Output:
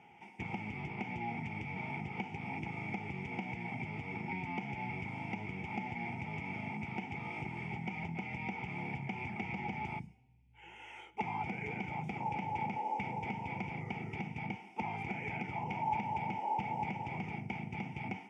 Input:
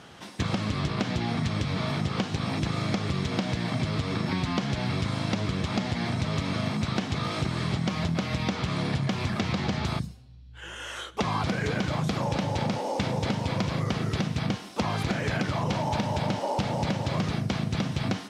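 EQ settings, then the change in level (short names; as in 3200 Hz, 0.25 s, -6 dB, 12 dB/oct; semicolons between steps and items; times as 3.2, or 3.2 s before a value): vowel filter u; fixed phaser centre 1100 Hz, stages 6; +9.5 dB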